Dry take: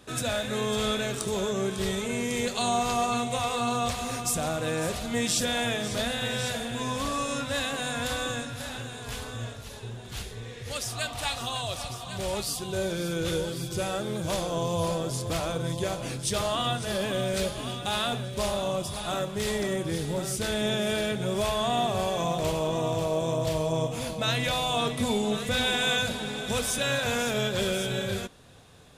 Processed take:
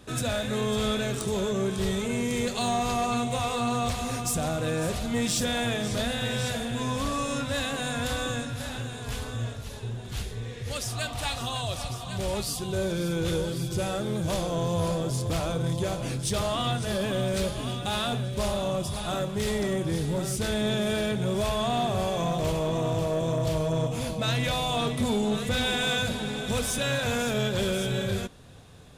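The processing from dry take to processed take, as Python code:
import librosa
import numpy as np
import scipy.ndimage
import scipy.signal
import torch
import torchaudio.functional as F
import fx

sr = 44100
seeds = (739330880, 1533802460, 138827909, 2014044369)

y = fx.low_shelf(x, sr, hz=260.0, db=6.5)
y = 10.0 ** (-19.0 / 20.0) * np.tanh(y / 10.0 ** (-19.0 / 20.0))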